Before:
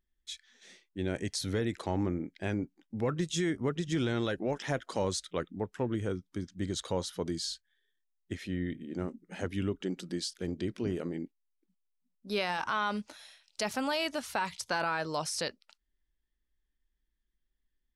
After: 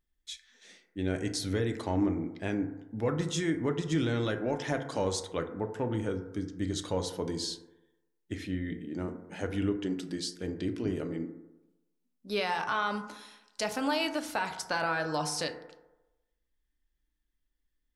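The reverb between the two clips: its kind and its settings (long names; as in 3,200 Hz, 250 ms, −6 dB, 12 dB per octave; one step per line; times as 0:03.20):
feedback delay network reverb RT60 1 s, low-frequency decay 0.85×, high-frequency decay 0.3×, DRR 5.5 dB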